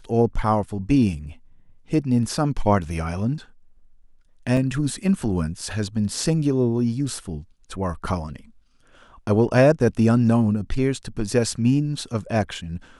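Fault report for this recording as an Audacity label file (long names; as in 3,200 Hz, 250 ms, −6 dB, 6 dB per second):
4.570000	4.570000	drop-out 2.3 ms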